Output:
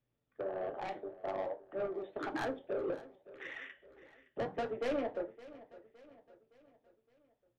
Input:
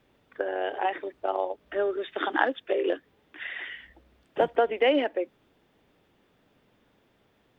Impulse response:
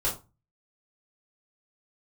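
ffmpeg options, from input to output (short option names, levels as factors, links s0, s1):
-filter_complex "[0:a]afwtdn=0.0224,flanger=delay=6.7:depth=9.3:regen=-58:speed=1.7:shape=triangular,asoftclip=type=tanh:threshold=0.0316,equalizer=f=120:t=o:w=2.7:g=8,aecho=1:1:565|1130|1695|2260:0.126|0.0604|0.029|0.0139,asplit=2[s0][s1];[1:a]atrim=start_sample=2205,asetrate=52920,aresample=44100[s2];[s1][s2]afir=irnorm=-1:irlink=0,volume=0.2[s3];[s0][s3]amix=inputs=2:normalize=0,volume=0.562"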